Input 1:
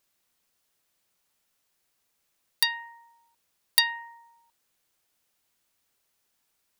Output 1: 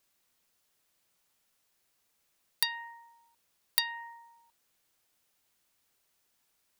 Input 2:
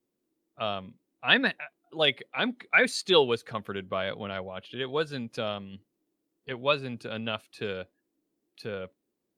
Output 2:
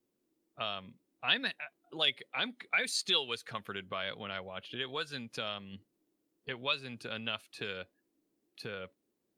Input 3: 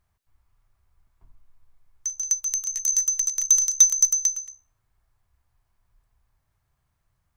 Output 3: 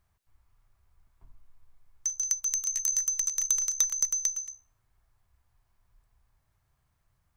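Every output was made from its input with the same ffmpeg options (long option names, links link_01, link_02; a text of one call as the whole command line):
ffmpeg -i in.wav -filter_complex "[0:a]acrossover=split=1200|2900[link_01][link_02][link_03];[link_01]acompressor=threshold=-42dB:ratio=4[link_04];[link_02]acompressor=threshold=-38dB:ratio=4[link_05];[link_03]acompressor=threshold=-26dB:ratio=4[link_06];[link_04][link_05][link_06]amix=inputs=3:normalize=0" out.wav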